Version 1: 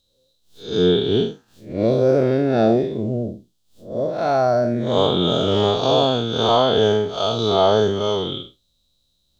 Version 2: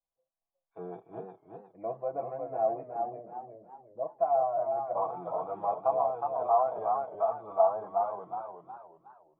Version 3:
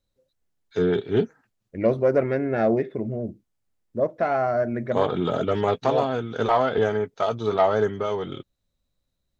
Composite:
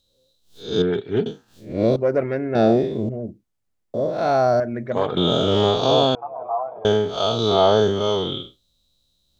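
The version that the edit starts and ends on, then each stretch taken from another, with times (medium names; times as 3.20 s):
1
0.82–1.26 s: from 3
1.96–2.55 s: from 3
3.09–3.94 s: from 3
4.60–5.17 s: from 3
6.15–6.85 s: from 2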